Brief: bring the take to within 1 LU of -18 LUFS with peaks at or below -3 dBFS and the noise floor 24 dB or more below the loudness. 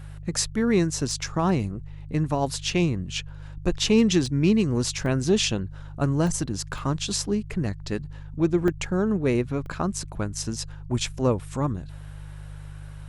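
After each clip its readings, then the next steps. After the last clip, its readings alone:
dropouts 8; longest dropout 1.1 ms; hum 50 Hz; harmonics up to 150 Hz; hum level -36 dBFS; loudness -25.5 LUFS; peak -8.5 dBFS; loudness target -18.0 LUFS
-> interpolate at 1.11/4.26/5.06/6.27/6.78/8.68/9.66/11.06, 1.1 ms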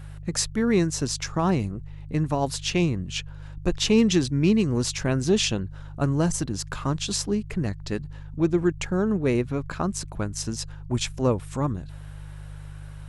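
dropouts 0; hum 50 Hz; harmonics up to 150 Hz; hum level -36 dBFS
-> de-hum 50 Hz, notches 3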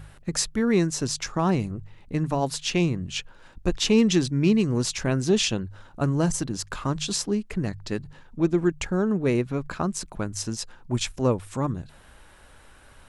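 hum none; loudness -25.5 LUFS; peak -8.5 dBFS; loudness target -18.0 LUFS
-> gain +7.5 dB; limiter -3 dBFS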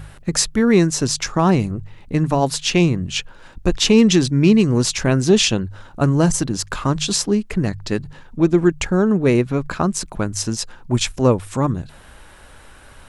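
loudness -18.5 LUFS; peak -3.0 dBFS; noise floor -44 dBFS

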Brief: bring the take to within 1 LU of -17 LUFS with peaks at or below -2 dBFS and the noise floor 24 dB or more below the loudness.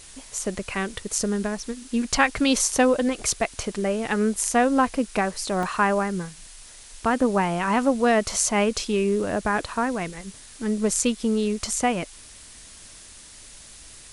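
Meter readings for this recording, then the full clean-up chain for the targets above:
dropouts 1; longest dropout 2.1 ms; noise floor -46 dBFS; noise floor target -48 dBFS; loudness -24.0 LUFS; peak -4.0 dBFS; loudness target -17.0 LUFS
-> interpolate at 5.63, 2.1 ms; denoiser 6 dB, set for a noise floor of -46 dBFS; gain +7 dB; limiter -2 dBFS

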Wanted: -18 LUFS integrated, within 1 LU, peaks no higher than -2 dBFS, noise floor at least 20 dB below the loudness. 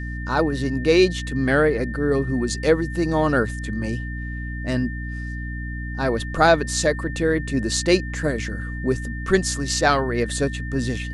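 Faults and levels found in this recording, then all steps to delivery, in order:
hum 60 Hz; harmonics up to 300 Hz; hum level -27 dBFS; steady tone 1800 Hz; tone level -35 dBFS; loudness -22.5 LUFS; peak -2.5 dBFS; loudness target -18.0 LUFS
-> de-hum 60 Hz, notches 5; notch 1800 Hz, Q 30; gain +4.5 dB; limiter -2 dBFS

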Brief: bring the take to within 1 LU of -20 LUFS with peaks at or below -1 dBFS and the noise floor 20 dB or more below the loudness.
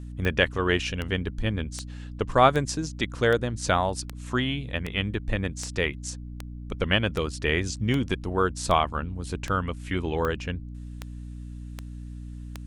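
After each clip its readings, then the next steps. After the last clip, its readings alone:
clicks 17; hum 60 Hz; harmonics up to 300 Hz; hum level -35 dBFS; loudness -27.0 LUFS; peak -5.5 dBFS; loudness target -20.0 LUFS
-> de-click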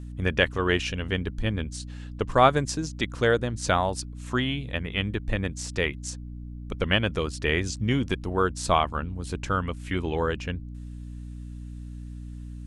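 clicks 0; hum 60 Hz; harmonics up to 300 Hz; hum level -35 dBFS
-> notches 60/120/180/240/300 Hz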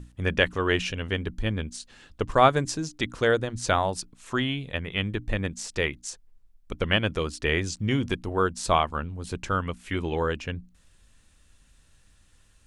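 hum none; loudness -27.0 LUFS; peak -5.5 dBFS; loudness target -20.0 LUFS
-> gain +7 dB; limiter -1 dBFS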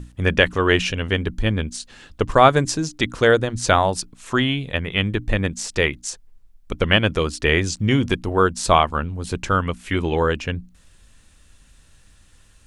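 loudness -20.5 LUFS; peak -1.0 dBFS; noise floor -53 dBFS

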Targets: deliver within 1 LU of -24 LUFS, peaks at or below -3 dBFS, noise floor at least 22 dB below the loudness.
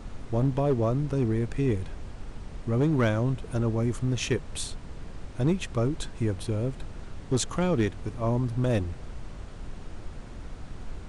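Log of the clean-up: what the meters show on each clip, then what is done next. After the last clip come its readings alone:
clipped 0.6%; flat tops at -17.5 dBFS; noise floor -42 dBFS; noise floor target -50 dBFS; loudness -28.0 LUFS; peak -17.5 dBFS; loudness target -24.0 LUFS
-> clip repair -17.5 dBFS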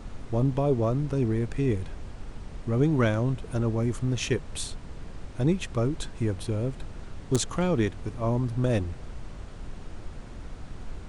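clipped 0.0%; noise floor -42 dBFS; noise floor target -50 dBFS
-> noise print and reduce 8 dB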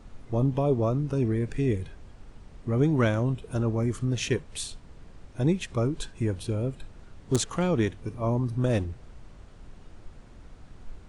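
noise floor -50 dBFS; loudness -28.0 LUFS; peak -8.5 dBFS; loudness target -24.0 LUFS
-> gain +4 dB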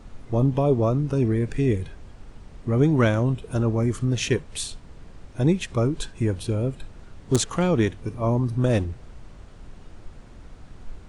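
loudness -24.0 LUFS; peak -4.5 dBFS; noise floor -46 dBFS

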